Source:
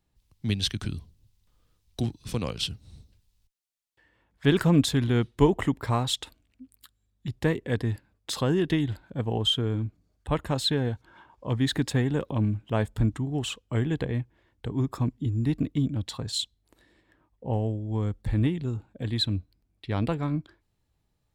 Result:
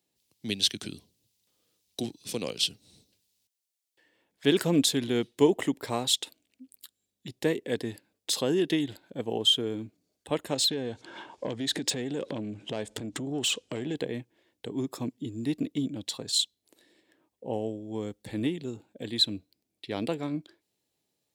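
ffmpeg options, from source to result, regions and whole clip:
-filter_complex "[0:a]asettb=1/sr,asplit=3[s0][s1][s2];[s0]atrim=end=10.544[s3];[s1]atrim=start=10.54:end=13.95,asetpts=PTS-STARTPTS,afade=t=in:d=0.004:c=qsin,afade=t=out:st=3.406:d=0.004:c=qsin,lowpass=f=8900:w=0.5412,lowpass=f=8900:w=1.3066,acompressor=threshold=0.0158:ratio=16:attack=3.2:release=140:knee=1:detection=peak,aeval=exprs='0.0708*sin(PI/2*2.82*val(0)/0.0708)':c=same[s4];[s2]atrim=start=13.946[s5];[s3][s4]acrossfade=d=0.004:c1=hsin:c2=qsin[s6];[s6][s5]acrossfade=d=0.004:c1=qsin:c2=hsin,highpass=370,equalizer=f=1200:w=0.78:g=-13.5,volume=2"

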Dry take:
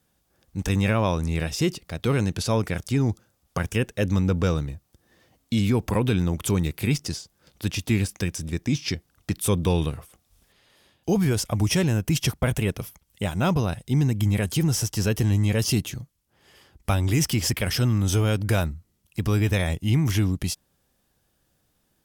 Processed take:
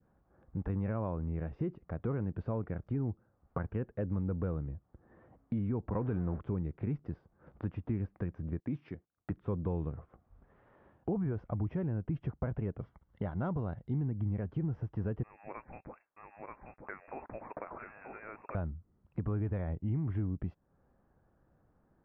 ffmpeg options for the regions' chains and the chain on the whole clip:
-filter_complex "[0:a]asettb=1/sr,asplit=3[s0][s1][s2];[s0]atrim=end=5.944[s3];[s1]atrim=start=5.94:end=6.4,asetpts=PTS-STARTPTS,afade=t=in:d=0.004:c=qsin,afade=t=out:st=0.456:d=0.004:c=qsin,aeval=exprs='val(0)+0.5*0.0282*sgn(val(0))':c=same,equalizer=f=1100:w=0.66:g=4[s4];[s2]atrim=start=6.396[s5];[s3][s4]acrossfade=d=0.004:c1=hsin:c2=qsin[s6];[s6][s5]acrossfade=d=0.004:c1=qsin:c2=hsin,asettb=1/sr,asplit=3[s7][s8][s9];[s7]atrim=end=8.604[s10];[s8]atrim=start=8.6:end=9.31,asetpts=PTS-STARTPTS,afade=t=in:d=0.004:c=qsin,afade=t=out:st=0.706:d=0.004:c=qsin,highpass=f=160:p=1,agate=range=0.1:threshold=0.00126:ratio=16:release=100:detection=peak,highshelf=f=3400:g=9.5[s11];[s9]atrim=start=9.306[s12];[s10][s11]acrossfade=d=0.004:c1=hsin:c2=qsin[s13];[s13][s12]acrossfade=d=0.004:c1=qsin:c2=hsin,asettb=1/sr,asplit=3[s14][s15][s16];[s14]atrim=end=12.804[s17];[s15]atrim=start=12.8:end=13.96,asetpts=PTS-STARTPTS,afade=t=in:d=0.004:c=qsin,afade=t=out:st=1.156:d=0.004:c=qsin,asuperstop=centerf=2500:order=4:qfactor=7.5,equalizer=f=4900:w=0.94:g=13[s18];[s16]atrim=start=13.956[s19];[s17][s18]acrossfade=d=0.004:c1=hsin:c2=qsin[s20];[s20][s19]acrossfade=d=0.004:c1=qsin:c2=hsin,asettb=1/sr,asplit=3[s21][s22][s23];[s21]atrim=end=15.234[s24];[s22]atrim=start=15.23:end=18.55,asetpts=PTS-STARTPTS,afade=t=in:d=0.004:c=qsin,afade=t=out:st=3.316:d=0.004:c=qsin,highpass=580,aecho=1:1:933:0.447,atrim=end_sample=146412,lowpass=f=2400:t=q:w=0.5098,lowpass=f=2400:t=q:w=0.6013,lowpass=f=2400:t=q:w=0.9,lowpass=f=2400:t=q:w=2.563,afreqshift=-2800[s25];[s23]atrim=start=18.546[s26];[s24][s25]acrossfade=d=0.004:c1=hsin:c2=qsin[s27];[s27][s26]acrossfade=d=0.004:c1=qsin:c2=hsin,acompressor=threshold=0.01:ratio=2.5,adynamicequalizer=threshold=0.00178:dfrequency=1100:dqfactor=1:tfrequency=1100:tqfactor=1:attack=5:release=100:ratio=0.375:range=2.5:mode=cutabove:tftype=bell,lowpass=f=1400:w=0.5412,lowpass=f=1400:w=1.3066,volume=1.26"

